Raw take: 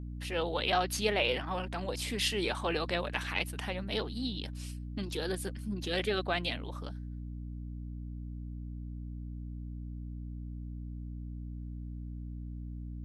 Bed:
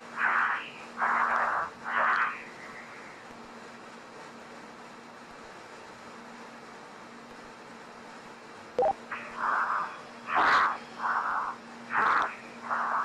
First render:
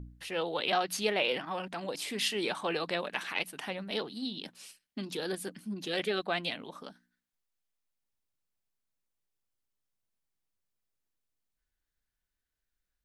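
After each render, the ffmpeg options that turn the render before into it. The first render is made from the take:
-af "bandreject=f=60:t=h:w=4,bandreject=f=120:t=h:w=4,bandreject=f=180:t=h:w=4,bandreject=f=240:t=h:w=4,bandreject=f=300:t=h:w=4"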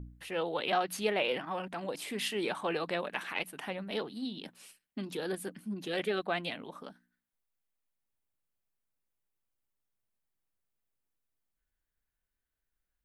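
-af "equalizer=f=5.1k:t=o:w=1.4:g=-7.5"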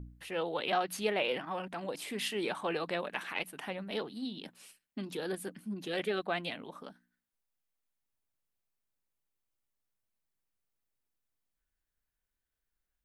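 -af "volume=-1dB"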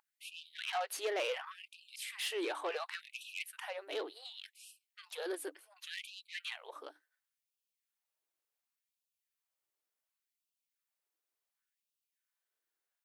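-af "asoftclip=type=tanh:threshold=-29.5dB,afftfilt=real='re*gte(b*sr/1024,260*pow(2500/260,0.5+0.5*sin(2*PI*0.69*pts/sr)))':imag='im*gte(b*sr/1024,260*pow(2500/260,0.5+0.5*sin(2*PI*0.69*pts/sr)))':win_size=1024:overlap=0.75"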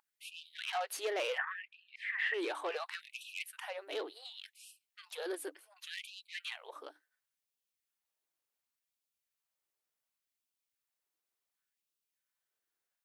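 -filter_complex "[0:a]asettb=1/sr,asplit=3[a][b][c];[a]atrim=end=1.384[d];[b]atrim=start=1.38:end=2.34,asetpts=PTS-STARTPTS,afade=t=in:d=0.004:c=qsin,afade=t=out:st=0.956:d=0.004:c=qsin,lowpass=f=1.8k:t=q:w=9.1[e];[c]atrim=start=2.336[f];[d][e]acrossfade=d=0.004:c1=hsin:c2=qsin[g];[g][f]acrossfade=d=0.004:c1=qsin:c2=hsin"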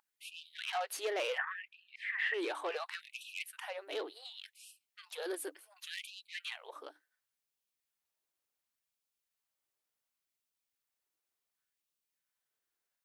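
-filter_complex "[0:a]asettb=1/sr,asplit=3[a][b][c];[a]atrim=end=5.224[d];[b]atrim=start=5.22:end=6.11,asetpts=PTS-STARTPTS,afade=t=in:d=0.004:c=qsin,afade=t=out:st=0.886:d=0.004:c=qsin,highshelf=f=7k:g=4.5[e];[c]atrim=start=6.106[f];[d][e]acrossfade=d=0.004:c1=hsin:c2=qsin[g];[g][f]acrossfade=d=0.004:c1=qsin:c2=hsin"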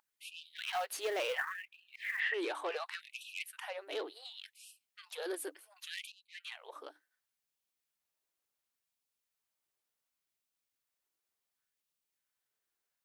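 -filter_complex "[0:a]asettb=1/sr,asplit=3[a][b][c];[a]atrim=end=0.564[d];[b]atrim=start=0.56:end=2.2,asetpts=PTS-STARTPTS,afade=t=in:d=0.004:c=qsin,afade=t=out:st=1.636:d=0.004:c=qsin,acrusher=bits=5:mode=log:mix=0:aa=0.000001[e];[c]atrim=start=2.196[f];[d][e]acrossfade=d=0.004:c1=hsin:c2=qsin[g];[g][f]acrossfade=d=0.004:c1=qsin:c2=hsin,asplit=2[h][i];[h]atrim=end=6.12,asetpts=PTS-STARTPTS,afade=t=out:st=6.116:d=0.004:c=hsin:silence=0.149624[j];[i]atrim=start=6.12,asetpts=PTS-STARTPTS,afade=t=in:d=0.64:silence=0.149624[k];[j][k]concat=n=2:v=0:a=1"

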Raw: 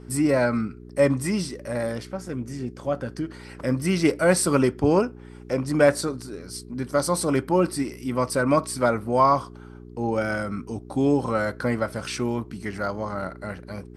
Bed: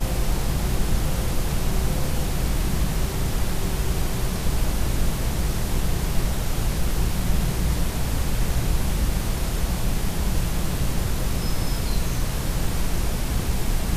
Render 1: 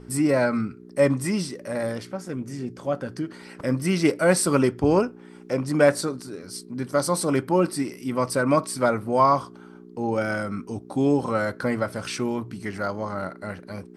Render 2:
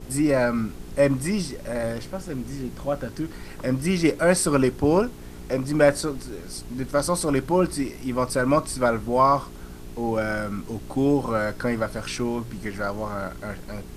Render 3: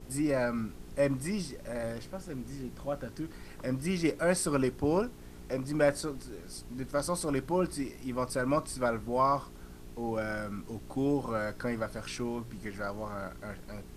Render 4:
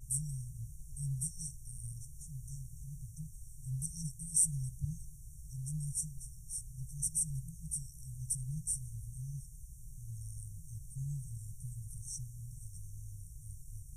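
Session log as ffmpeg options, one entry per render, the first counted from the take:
-af "bandreject=f=60:t=h:w=4,bandreject=f=120:t=h:w=4"
-filter_complex "[1:a]volume=-17.5dB[a];[0:a][a]amix=inputs=2:normalize=0"
-af "volume=-8.5dB"
-af "afftfilt=real='re*(1-between(b*sr/4096,170,5500))':imag='im*(1-between(b*sr/4096,170,5500))':win_size=4096:overlap=0.75,equalizer=f=9k:t=o:w=0.27:g=9"

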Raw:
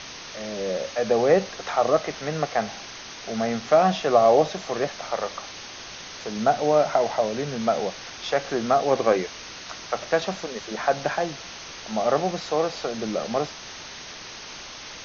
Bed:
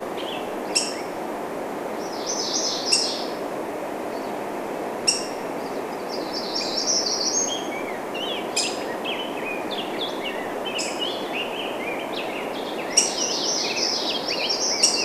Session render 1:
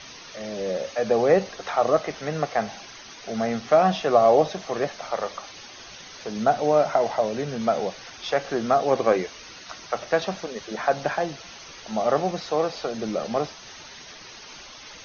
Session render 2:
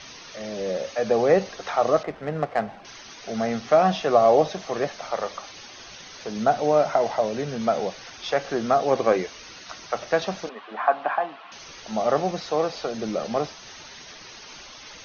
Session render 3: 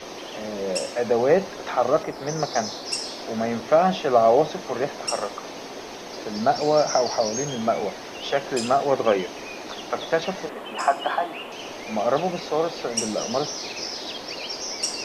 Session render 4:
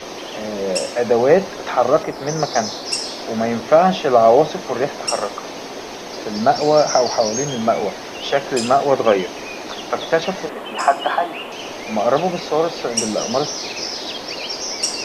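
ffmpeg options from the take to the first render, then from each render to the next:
-af "afftdn=nr=9:nf=-40"
-filter_complex "[0:a]asettb=1/sr,asplit=3[a][b][c];[a]atrim=end=2.034[d];[b]atrim=start=2.03:end=2.85,asetpts=PTS-STARTPTS,afade=t=in:d=0.004:c=qsin,afade=t=out:st=0.816:d=0.004:c=qsin,adynamicsmooth=sensitivity=1.5:basefreq=1.5k[e];[c]atrim=start=2.846[f];[d][e]acrossfade=d=0.004:c1=hsin:c2=qsin[g];[g][f]acrossfade=d=0.004:c1=qsin:c2=hsin,asettb=1/sr,asplit=3[h][i][j];[h]atrim=end=10.494[k];[i]atrim=start=10.49:end=11.52,asetpts=PTS-STARTPTS,afade=t=in:d=0.004:c=qsin,afade=t=out:st=1.026:d=0.004:c=qsin,highpass=f=270:w=0.5412,highpass=f=270:w=1.3066,equalizer=f=360:t=q:w=4:g=-10,equalizer=f=510:t=q:w=4:g=-9,equalizer=f=760:t=q:w=4:g=5,equalizer=f=1.1k:t=q:w=4:g=9,equalizer=f=2.1k:t=q:w=4:g=-4,lowpass=f=2.9k:w=0.5412,lowpass=f=2.9k:w=1.3066[l];[j]atrim=start=11.516[m];[k][l]acrossfade=d=0.004:c1=hsin:c2=qsin[n];[n][m]acrossfade=d=0.004:c1=qsin:c2=hsin"
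-filter_complex "[1:a]volume=-8.5dB[a];[0:a][a]amix=inputs=2:normalize=0"
-af "volume=5.5dB,alimiter=limit=-1dB:level=0:latency=1"

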